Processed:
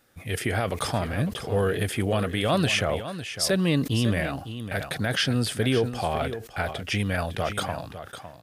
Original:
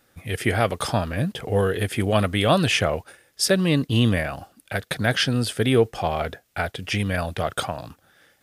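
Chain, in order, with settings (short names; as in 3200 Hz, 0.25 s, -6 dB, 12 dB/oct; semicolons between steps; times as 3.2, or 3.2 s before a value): limiter -11.5 dBFS, peak gain reduction 6.5 dB; echo 0.555 s -11.5 dB; sustainer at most 130 dB/s; gain -2 dB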